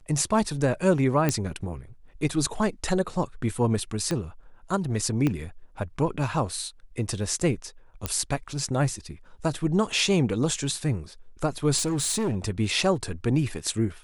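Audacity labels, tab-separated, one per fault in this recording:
1.290000	1.290000	pop -9 dBFS
4.110000	4.110000	pop -14 dBFS
5.270000	5.270000	pop -13 dBFS
8.060000	8.060000	pop -10 dBFS
11.770000	12.370000	clipped -22.5 dBFS

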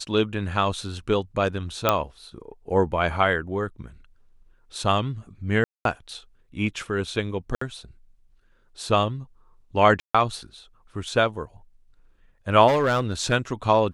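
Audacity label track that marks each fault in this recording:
1.890000	1.890000	pop -4 dBFS
5.640000	5.850000	gap 0.212 s
7.550000	7.610000	gap 64 ms
10.000000	10.140000	gap 0.145 s
12.670000	13.330000	clipped -16.5 dBFS

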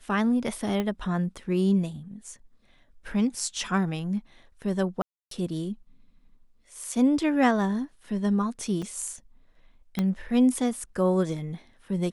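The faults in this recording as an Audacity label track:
0.800000	0.800000	pop -16 dBFS
5.020000	5.310000	gap 0.293 s
8.820000	8.830000	gap 5.1 ms
9.990000	9.990000	pop -14 dBFS

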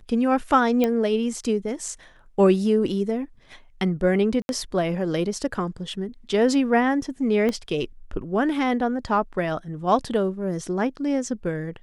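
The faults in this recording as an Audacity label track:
0.840000	0.840000	pop -10 dBFS
4.420000	4.490000	gap 71 ms
7.490000	7.490000	pop -14 dBFS

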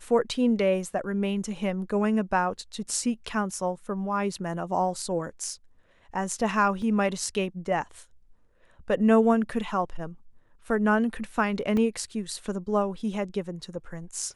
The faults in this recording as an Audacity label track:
6.820000	6.820000	gap 2 ms
11.770000	11.770000	gap 2.2 ms

